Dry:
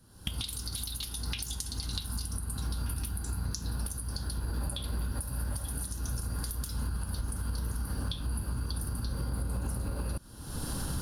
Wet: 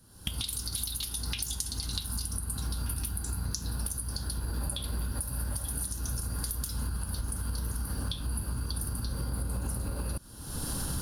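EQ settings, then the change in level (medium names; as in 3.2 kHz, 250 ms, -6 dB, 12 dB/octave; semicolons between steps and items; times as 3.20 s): treble shelf 5.2 kHz +5.5 dB; 0.0 dB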